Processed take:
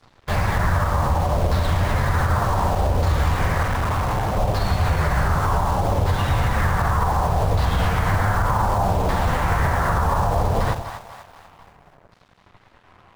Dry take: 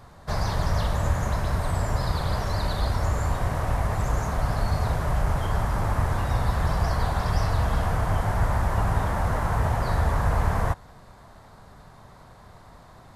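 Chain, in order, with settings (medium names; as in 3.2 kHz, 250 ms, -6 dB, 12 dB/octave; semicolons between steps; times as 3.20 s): LFO low-pass saw down 0.66 Hz 510–4500 Hz; on a send at -19 dB: reverberation RT60 0.35 s, pre-delay 6 ms; on the sum: flange 0.47 Hz, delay 8.9 ms, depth 3.9 ms, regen -34%; band-stop 650 Hz, Q 18; in parallel at -4 dB: bit crusher 6-bit; on the sum: two-band feedback delay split 640 Hz, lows 81 ms, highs 244 ms, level -9 dB; 3.63–4.37 s: hard clipper -23.5 dBFS, distortion -19 dB; peak limiter -15.5 dBFS, peak gain reduction 7.5 dB; crossover distortion -50.5 dBFS; trim +5 dB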